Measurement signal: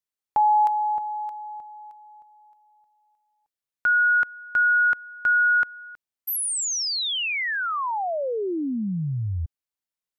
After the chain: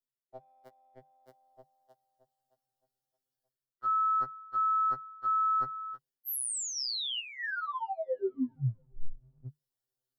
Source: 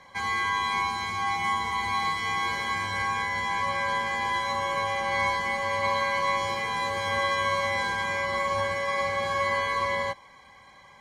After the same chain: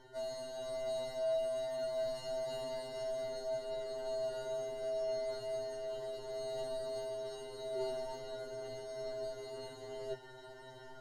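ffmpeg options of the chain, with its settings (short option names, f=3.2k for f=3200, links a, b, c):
-filter_complex "[0:a]equalizer=f=2.9k:t=o:w=2.8:g=-8,asplit=2[a][b];[b]adynamicsmooth=sensitivity=0.5:basefreq=980,volume=-1.5dB[c];[a][c]amix=inputs=2:normalize=0,superequalizer=8b=1.41:11b=1.41:12b=0.316:13b=1.58:14b=1.78,afreqshift=-150,areverse,acompressor=threshold=-35dB:ratio=5:attack=1.2:release=790:knee=1:detection=peak,areverse,afftfilt=real='re*2.45*eq(mod(b,6),0)':imag='im*2.45*eq(mod(b,6),0)':win_size=2048:overlap=0.75,volume=4dB"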